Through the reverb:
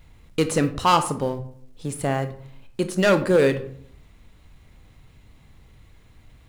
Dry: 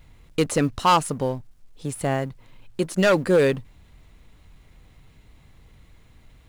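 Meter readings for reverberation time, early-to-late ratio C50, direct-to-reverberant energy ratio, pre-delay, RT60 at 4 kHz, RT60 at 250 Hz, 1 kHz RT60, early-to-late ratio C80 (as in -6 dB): 0.60 s, 13.0 dB, 9.5 dB, 21 ms, 0.35 s, 0.75 s, 0.55 s, 16.5 dB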